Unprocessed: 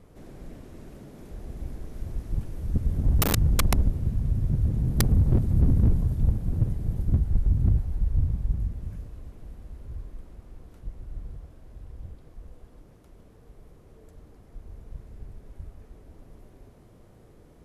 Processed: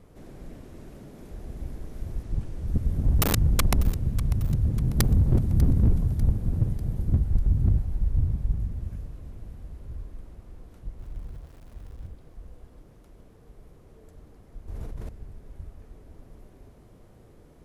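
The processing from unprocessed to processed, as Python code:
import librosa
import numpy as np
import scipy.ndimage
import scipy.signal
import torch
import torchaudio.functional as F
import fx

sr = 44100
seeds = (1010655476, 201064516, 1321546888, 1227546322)

y = fx.lowpass(x, sr, hz=9200.0, slope=12, at=(2.23, 2.67))
y = fx.sample_gate(y, sr, floor_db=-50.5, at=(10.99, 12.07))
y = fx.echo_feedback(y, sr, ms=595, feedback_pct=49, wet_db=-16.5)
y = fx.env_flatten(y, sr, amount_pct=100, at=(14.68, 15.09))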